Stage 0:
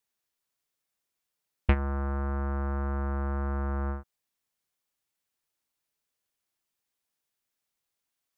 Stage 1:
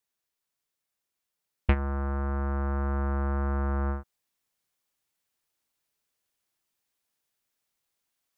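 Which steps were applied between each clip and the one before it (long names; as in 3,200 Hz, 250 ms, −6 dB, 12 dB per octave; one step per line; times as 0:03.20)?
speech leveller 2 s
level +2 dB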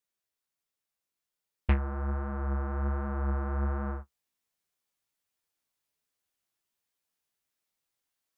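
flanger 1.3 Hz, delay 9.2 ms, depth 9.4 ms, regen +31%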